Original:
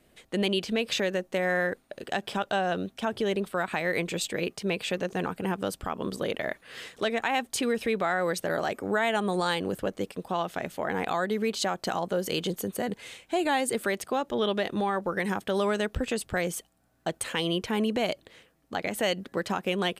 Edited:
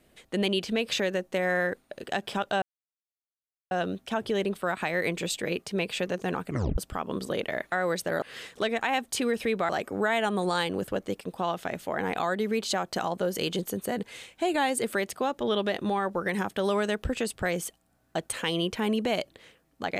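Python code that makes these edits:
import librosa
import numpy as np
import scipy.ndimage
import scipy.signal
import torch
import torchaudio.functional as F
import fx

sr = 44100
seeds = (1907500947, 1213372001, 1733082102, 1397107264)

y = fx.edit(x, sr, fx.insert_silence(at_s=2.62, length_s=1.09),
    fx.tape_stop(start_s=5.37, length_s=0.32),
    fx.move(start_s=8.1, length_s=0.5, to_s=6.63), tone=tone)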